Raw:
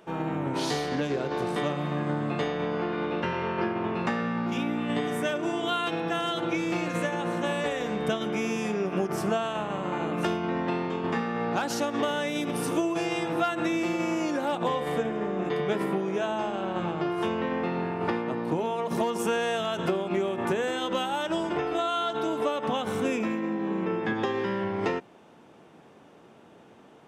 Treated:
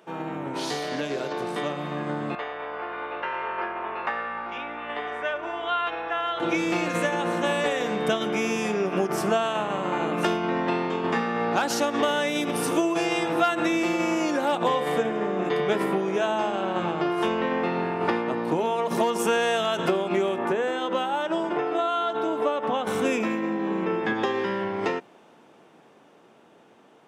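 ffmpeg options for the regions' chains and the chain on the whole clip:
ffmpeg -i in.wav -filter_complex "[0:a]asettb=1/sr,asplit=3[link_01][link_02][link_03];[link_01]atrim=end=0.824[link_04];[link_02]atrim=start=0.82:end=1.33,asetpts=PTS-STARTPTS,afade=type=in:duration=0.004:curve=qsin,afade=type=out:start_time=0.506:duration=0.004:curve=qsin,acrossover=split=3800[link_05][link_06];[link_06]acompressor=threshold=-51dB:ratio=4:attack=1:release=60[link_07];[link_05][link_07]amix=inputs=2:normalize=0,highshelf=frequency=4000:gain=11.5,aeval=exprs='val(0)+0.0158*sin(2*PI*620*n/s)':channel_layout=same[link_08];[link_03]atrim=start=1.326[link_09];[link_04][link_08]acrossfade=duration=0.004:curve1=hsin:curve2=qsin[link_10];[link_10][link_09]acrossfade=duration=0.004:curve1=qsin:curve2=hsin,asettb=1/sr,asplit=3[link_11][link_12][link_13];[link_11]atrim=end=2.354[link_14];[link_12]atrim=start=2.35:end=6.4,asetpts=PTS-STARTPTS,afade=type=in:duration=0.004:curve=qsin,afade=type=out:start_time=4.046:duration=0.004:curve=qsin,highpass=700,lowpass=2200,aeval=exprs='val(0)+0.00224*(sin(2*PI*60*n/s)+sin(2*PI*2*60*n/s)/2+sin(2*PI*3*60*n/s)/3+sin(2*PI*4*60*n/s)/4+sin(2*PI*5*60*n/s)/5)':channel_layout=same[link_15];[link_13]atrim=start=6.396[link_16];[link_14][link_15]acrossfade=duration=0.004:curve1=hsin:curve2=qsin[link_17];[link_17][link_16]acrossfade=duration=0.004:curve1=qsin:curve2=hsin,asettb=1/sr,asplit=3[link_18][link_19][link_20];[link_18]atrim=end=20.384[link_21];[link_19]atrim=start=20.38:end=22.87,asetpts=PTS-STARTPTS,afade=type=in:duration=0.004:curve=qsin,afade=type=out:start_time=2.486:duration=0.004:curve=qsin,highpass=frequency=190:poles=1,highshelf=frequency=2800:gain=-12[link_22];[link_20]atrim=start=22.866[link_23];[link_21][link_22]acrossfade=duration=0.004:curve1=hsin:curve2=qsin[link_24];[link_24][link_23]acrossfade=duration=0.004:curve1=qsin:curve2=hsin,highpass=frequency=260:poles=1,dynaudnorm=framelen=250:gausssize=21:maxgain=5dB" out.wav

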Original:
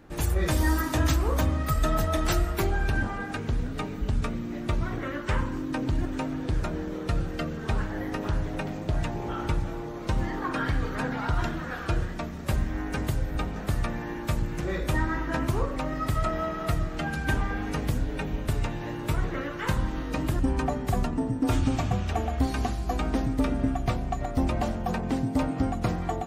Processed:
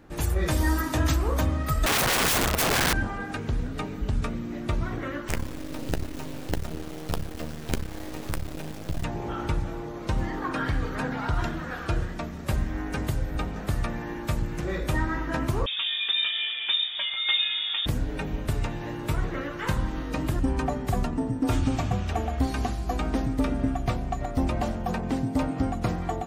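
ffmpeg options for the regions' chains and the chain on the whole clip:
ffmpeg -i in.wav -filter_complex "[0:a]asettb=1/sr,asplit=3[link_01][link_02][link_03];[link_01]atrim=end=1.864[link_04];[link_02]atrim=start=1.86:end=2.93,asetpts=PTS-STARTPTS,afade=type=in:duration=0.004:curve=qsin,afade=type=out:start_time=1.066:duration=0.004:curve=qsin,bandreject=frequency=50:width_type=h:width=6,bandreject=frequency=100:width_type=h:width=6,bandreject=frequency=150:width_type=h:width=6,bandreject=frequency=200:width_type=h:width=6,bandreject=frequency=250:width_type=h:width=6,bandreject=frequency=300:width_type=h:width=6,bandreject=frequency=350:width_type=h:width=6,bandreject=frequency=400:width_type=h:width=6,bandreject=frequency=450:width_type=h:width=6,acontrast=41,aeval=exprs='(mod(8.41*val(0)+1,2)-1)/8.41':channel_layout=same[link_05];[link_03]atrim=start=2.926[link_06];[link_04][link_05]acrossfade=duration=0.004:curve1=hsin:curve2=qsin[link_07];[link_07][link_06]acrossfade=duration=0.004:curve1=qsin:curve2=hsin,asettb=1/sr,asplit=3[link_08][link_09][link_10];[link_08]atrim=end=5.284[link_11];[link_09]atrim=start=5.28:end=9.04,asetpts=PTS-STARTPTS,afade=type=in:duration=0.004:curve=qsin,afade=type=out:start_time=3.756:duration=0.004:curve=qsin,equalizer=frequency=1200:width_type=o:width=2:gain=-8.5,acrusher=bits=4:dc=4:mix=0:aa=0.000001,asplit=2[link_12][link_13];[link_13]adelay=13,volume=-10.5dB[link_14];[link_12][link_14]amix=inputs=2:normalize=0,atrim=end_sample=165816[link_15];[link_10]atrim=start=9.036[link_16];[link_11][link_15]acrossfade=duration=0.004:curve1=hsin:curve2=qsin[link_17];[link_17][link_16]acrossfade=duration=0.004:curve1=qsin:curve2=hsin,asettb=1/sr,asplit=3[link_18][link_19][link_20];[link_18]atrim=end=15.664[link_21];[link_19]atrim=start=15.66:end=17.86,asetpts=PTS-STARTPTS,afade=type=in:duration=0.004:curve=qsin,afade=type=out:start_time=2.196:duration=0.004:curve=qsin,asplit=2[link_22][link_23];[link_23]adelay=16,volume=-6.5dB[link_24];[link_22][link_24]amix=inputs=2:normalize=0,atrim=end_sample=97020,lowpass=frequency=3100:width_type=q:width=0.5098,lowpass=frequency=3100:width_type=q:width=0.6013,lowpass=frequency=3100:width_type=q:width=0.9,lowpass=frequency=3100:width_type=q:width=2.563,afreqshift=-3700[link_25];[link_20]atrim=start=17.856[link_26];[link_21][link_25]acrossfade=duration=0.004:curve1=hsin:curve2=qsin[link_27];[link_27][link_26]acrossfade=duration=0.004:curve1=qsin:curve2=hsin" out.wav

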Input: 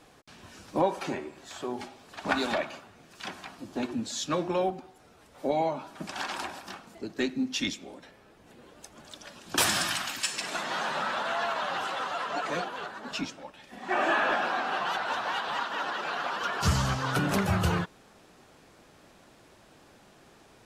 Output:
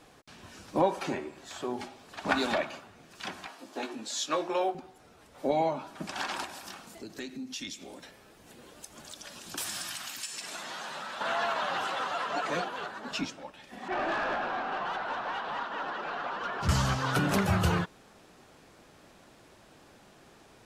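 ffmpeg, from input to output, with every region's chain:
ffmpeg -i in.wav -filter_complex "[0:a]asettb=1/sr,asplit=3[link_01][link_02][link_03];[link_01]atrim=end=3.474[link_04];[link_02]atrim=start=3.47:end=4.75,asetpts=PTS-STARTPTS,afade=type=in:duration=0.004:curve=qsin,afade=type=out:start_time=1.276:duration=0.004:curve=qsin,highpass=420,asplit=2[link_05][link_06];[link_06]adelay=19,volume=-6.5dB[link_07];[link_05][link_07]amix=inputs=2:normalize=0,atrim=end_sample=56448[link_08];[link_03]atrim=start=4.746[link_09];[link_04][link_08]acrossfade=duration=0.004:curve1=hsin:curve2=qsin[link_10];[link_10][link_09]acrossfade=duration=0.004:curve1=qsin:curve2=hsin,asettb=1/sr,asplit=3[link_11][link_12][link_13];[link_11]atrim=end=6.444[link_14];[link_12]atrim=start=6.44:end=11.21,asetpts=PTS-STARTPTS,afade=type=in:duration=0.004:curve=qsin,afade=type=out:start_time=4.766:duration=0.004:curve=qsin,highshelf=frequency=4200:gain=10.5,acompressor=threshold=-41dB:ratio=2.5:attack=3.2:release=140:knee=1:detection=peak[link_15];[link_13]atrim=start=11.206[link_16];[link_14][link_15]acrossfade=duration=0.004:curve1=hsin:curve2=qsin[link_17];[link_17][link_16]acrossfade=duration=0.004:curve1=qsin:curve2=hsin,asettb=1/sr,asplit=3[link_18][link_19][link_20];[link_18]atrim=end=13.884[link_21];[link_19]atrim=start=13.88:end=16.69,asetpts=PTS-STARTPTS,afade=type=in:duration=0.004:curve=qsin,afade=type=out:start_time=2.806:duration=0.004:curve=qsin,lowpass=frequency=1600:poles=1,aeval=exprs='(tanh(20*val(0)+0.05)-tanh(0.05))/20':channel_layout=same[link_22];[link_20]atrim=start=16.686[link_23];[link_21][link_22]acrossfade=duration=0.004:curve1=hsin:curve2=qsin[link_24];[link_24][link_23]acrossfade=duration=0.004:curve1=qsin:curve2=hsin" out.wav

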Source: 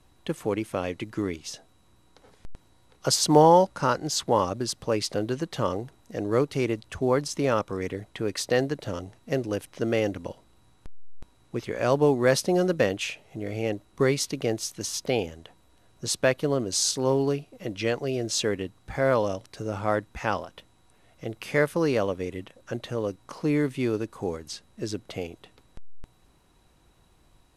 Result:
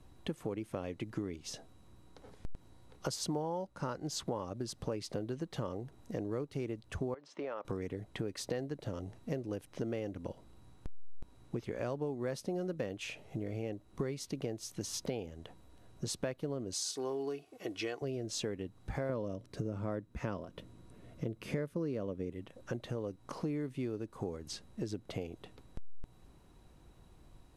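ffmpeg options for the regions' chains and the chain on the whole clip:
ffmpeg -i in.wav -filter_complex "[0:a]asettb=1/sr,asplit=3[link_01][link_02][link_03];[link_01]atrim=end=7.144[link_04];[link_02]atrim=start=7.14:end=7.65,asetpts=PTS-STARTPTS,afade=type=in:duration=0.004:curve=qsin,afade=type=out:start_time=0.506:duration=0.004:curve=qsin,highpass=510,lowpass=2600,acompressor=threshold=-34dB:ratio=4:attack=3.2:release=140:knee=1:detection=peak[link_05];[link_03]atrim=start=7.646[link_06];[link_04][link_05]acrossfade=duration=0.004:curve1=hsin:curve2=qsin[link_07];[link_07][link_06]acrossfade=duration=0.004:curve1=qsin:curve2=hsin,asettb=1/sr,asplit=3[link_08][link_09][link_10];[link_08]atrim=end=16.734[link_11];[link_09]atrim=start=16.73:end=18.02,asetpts=PTS-STARTPTS,afade=type=in:duration=0.004:curve=qsin,afade=type=out:start_time=1.286:duration=0.004:curve=qsin,highpass=frequency=650:poles=1,aecho=1:1:2.7:0.53,atrim=end_sample=56889[link_12];[link_10]atrim=start=18.016[link_13];[link_11][link_12]acrossfade=duration=0.004:curve1=hsin:curve2=qsin[link_14];[link_14][link_13]acrossfade=duration=0.004:curve1=qsin:curve2=hsin,asettb=1/sr,asplit=3[link_15][link_16][link_17];[link_15]atrim=end=19.094[link_18];[link_16]atrim=start=19.09:end=22.33,asetpts=PTS-STARTPTS,afade=type=in:duration=0.004:curve=qsin,afade=type=out:start_time=3.236:duration=0.004:curve=qsin,equalizer=frequency=200:width=0.38:gain=8,bandreject=frequency=800:width=5.2[link_19];[link_17]atrim=start=22.326[link_20];[link_18][link_19]acrossfade=duration=0.004:curve1=hsin:curve2=qsin[link_21];[link_21][link_20]acrossfade=duration=0.004:curve1=qsin:curve2=hsin,tiltshelf=frequency=690:gain=4,acompressor=threshold=-34dB:ratio=6,volume=-1dB" out.wav

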